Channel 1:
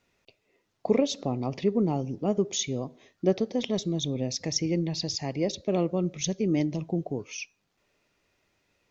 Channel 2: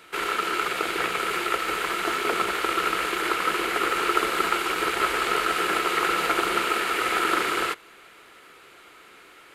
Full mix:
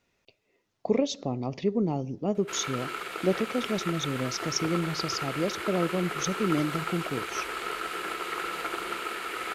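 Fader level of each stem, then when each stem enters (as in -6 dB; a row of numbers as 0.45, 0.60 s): -1.5, -9.5 dB; 0.00, 2.35 s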